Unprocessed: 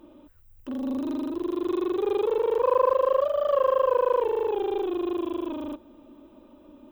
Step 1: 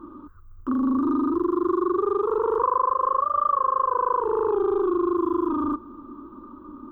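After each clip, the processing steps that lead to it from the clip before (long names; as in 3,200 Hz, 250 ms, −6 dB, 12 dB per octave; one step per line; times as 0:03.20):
drawn EQ curve 400 Hz 0 dB, 650 Hz −21 dB, 1,200 Hz +14 dB, 2,200 Hz −25 dB, 3,700 Hz −19 dB
downward compressor, threshold −28 dBFS, peak gain reduction 11 dB
level +9 dB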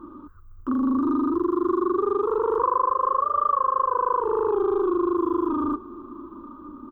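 single-tap delay 929 ms −21 dB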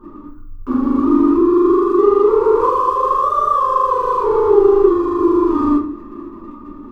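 in parallel at −6 dB: dead-zone distortion −37 dBFS
on the sum: rectangular room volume 37 cubic metres, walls mixed, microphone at 1.3 metres
level −3.5 dB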